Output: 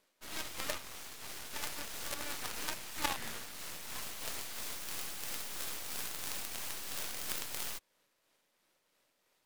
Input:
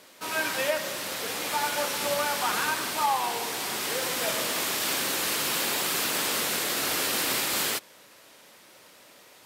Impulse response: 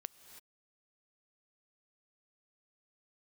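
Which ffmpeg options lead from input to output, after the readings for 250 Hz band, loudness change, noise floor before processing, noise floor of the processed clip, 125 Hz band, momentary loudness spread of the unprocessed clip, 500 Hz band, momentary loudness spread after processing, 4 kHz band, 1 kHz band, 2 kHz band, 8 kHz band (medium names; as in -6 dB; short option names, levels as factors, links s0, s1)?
-14.5 dB, -13.5 dB, -54 dBFS, -78 dBFS, -10.0 dB, 5 LU, -18.5 dB, 6 LU, -14.0 dB, -17.0 dB, -15.0 dB, -12.5 dB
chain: -af "aeval=exprs='0.251*(cos(1*acos(clip(val(0)/0.251,-1,1)))-cos(1*PI/2))+0.0891*(cos(2*acos(clip(val(0)/0.251,-1,1)))-cos(2*PI/2))+0.0891*(cos(3*acos(clip(val(0)/0.251,-1,1)))-cos(3*PI/2))+0.02*(cos(8*acos(clip(val(0)/0.251,-1,1)))-cos(8*PI/2))':c=same,tremolo=f=3:d=0.31,volume=1.19"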